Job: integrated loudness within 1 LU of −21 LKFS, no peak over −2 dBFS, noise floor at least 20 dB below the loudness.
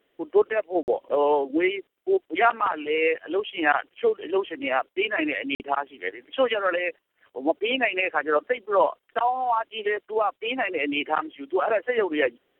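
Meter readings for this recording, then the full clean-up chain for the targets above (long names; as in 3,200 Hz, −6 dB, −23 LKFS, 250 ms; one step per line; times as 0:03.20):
number of dropouts 2; longest dropout 49 ms; integrated loudness −25.0 LKFS; sample peak −6.5 dBFS; target loudness −21.0 LKFS
→ repair the gap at 0:00.83/0:05.55, 49 ms
level +4 dB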